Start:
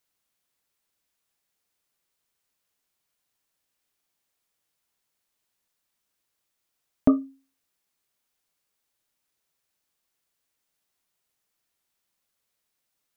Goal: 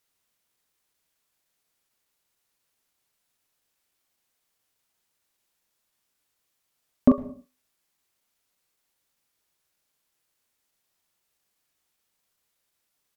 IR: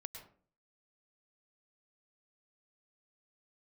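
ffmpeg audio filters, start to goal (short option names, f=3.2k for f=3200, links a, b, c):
-filter_complex "[0:a]asplit=2[a][b];[b]adelay=39,volume=-8dB[c];[a][c]amix=inputs=2:normalize=0,asplit=2[d][e];[1:a]atrim=start_sample=2205,afade=t=out:st=0.38:d=0.01,atrim=end_sample=17199[f];[e][f]afir=irnorm=-1:irlink=0,volume=-6.5dB[g];[d][g]amix=inputs=2:normalize=0,asetrate=41625,aresample=44100,atempo=1.05946"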